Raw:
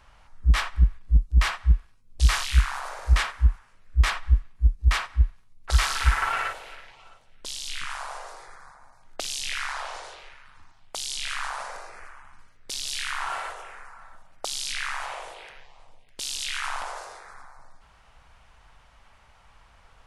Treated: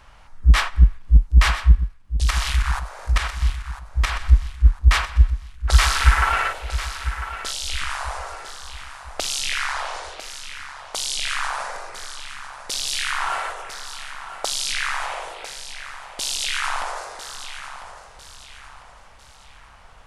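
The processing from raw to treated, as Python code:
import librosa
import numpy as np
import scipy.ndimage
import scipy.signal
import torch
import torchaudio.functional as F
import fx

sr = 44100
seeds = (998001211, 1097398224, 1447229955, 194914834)

y = fx.level_steps(x, sr, step_db=11, at=(1.75, 4.24))
y = fx.echo_feedback(y, sr, ms=999, feedback_pct=39, wet_db=-11.5)
y = y * 10.0 ** (6.0 / 20.0)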